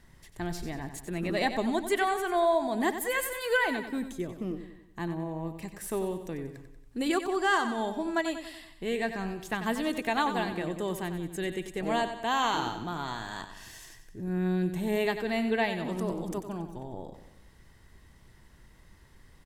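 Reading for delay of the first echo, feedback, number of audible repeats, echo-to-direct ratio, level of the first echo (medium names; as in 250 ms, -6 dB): 93 ms, 50%, 5, -9.0 dB, -10.0 dB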